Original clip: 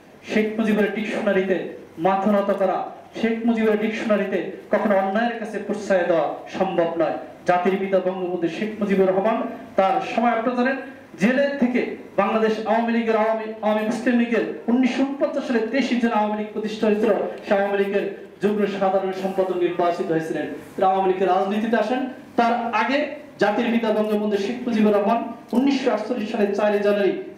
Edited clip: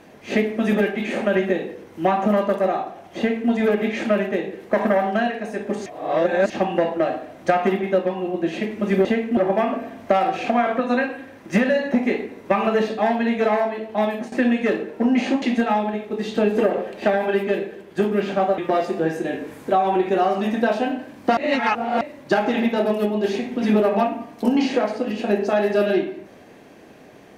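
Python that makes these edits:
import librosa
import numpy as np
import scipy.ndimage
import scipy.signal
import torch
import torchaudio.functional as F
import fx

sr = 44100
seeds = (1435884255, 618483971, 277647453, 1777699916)

y = fx.edit(x, sr, fx.duplicate(start_s=3.18, length_s=0.32, to_s=9.05),
    fx.reverse_span(start_s=5.86, length_s=0.64),
    fx.fade_out_to(start_s=13.7, length_s=0.3, floor_db=-15.5),
    fx.cut(start_s=15.1, length_s=0.77),
    fx.cut(start_s=19.03, length_s=0.65),
    fx.reverse_span(start_s=22.47, length_s=0.64), tone=tone)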